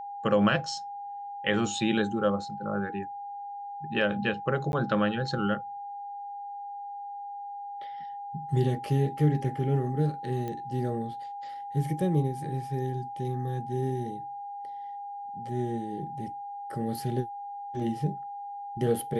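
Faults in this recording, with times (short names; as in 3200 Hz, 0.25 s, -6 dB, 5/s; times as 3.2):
tone 810 Hz -36 dBFS
4.72–4.73 gap 11 ms
10.48 pop -23 dBFS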